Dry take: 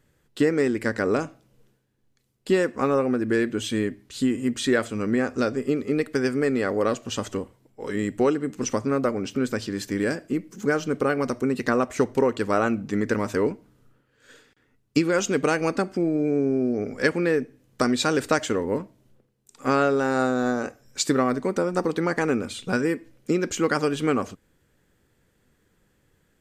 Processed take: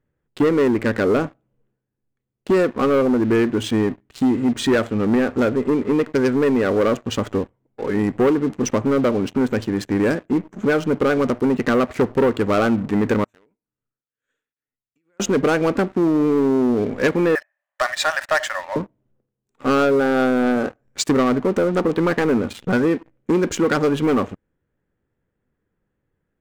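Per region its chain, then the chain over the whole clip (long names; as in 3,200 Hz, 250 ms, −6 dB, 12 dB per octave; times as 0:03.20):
0:13.24–0:15.20: first-order pre-emphasis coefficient 0.9 + downward compressor 10 to 1, threshold −45 dBFS + shaped tremolo triangle 2.1 Hz, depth 75%
0:17.35–0:18.76: linear-phase brick-wall high-pass 550 Hz + parametric band 1,800 Hz +13 dB 0.2 octaves
whole clip: adaptive Wiener filter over 9 samples; high-shelf EQ 2,300 Hz −6 dB; leveller curve on the samples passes 3; level −2.5 dB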